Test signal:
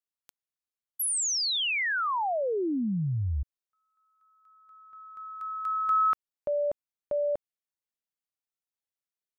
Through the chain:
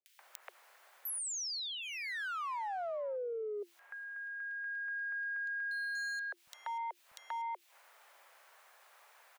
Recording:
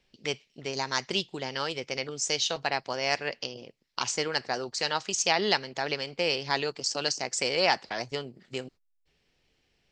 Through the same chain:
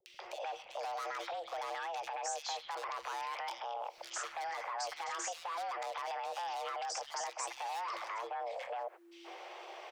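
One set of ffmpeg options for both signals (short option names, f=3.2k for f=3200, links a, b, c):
-filter_complex "[0:a]asplit=2[a][b];[b]acompressor=mode=upward:threshold=-29dB:ratio=2.5:attack=15:release=99:knee=2.83:detection=peak,volume=0dB[c];[a][c]amix=inputs=2:normalize=0,acrossover=split=190 2200:gain=0.2 1 0.141[d][e][f];[d][e][f]amix=inputs=3:normalize=0,asoftclip=type=hard:threshold=-25dB,afreqshift=340,acompressor=threshold=-41dB:ratio=16:attack=1.7:release=24:knee=6:detection=peak,acrossover=split=220|2700[g][h][i];[i]adelay=60[j];[h]adelay=190[k];[g][k][j]amix=inputs=3:normalize=0,volume=4.5dB"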